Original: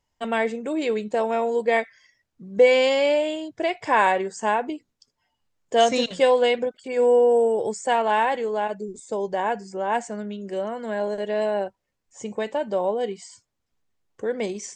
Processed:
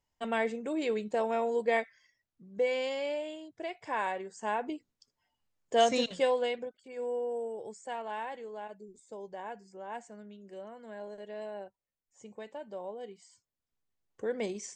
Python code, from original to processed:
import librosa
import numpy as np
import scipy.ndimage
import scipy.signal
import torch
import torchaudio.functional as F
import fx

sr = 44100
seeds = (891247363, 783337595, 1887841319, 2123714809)

y = fx.gain(x, sr, db=fx.line((1.7, -7.0), (2.63, -14.0), (4.29, -14.0), (4.73, -6.5), (6.01, -6.5), (6.9, -17.0), (13.14, -17.0), (14.24, -7.0)))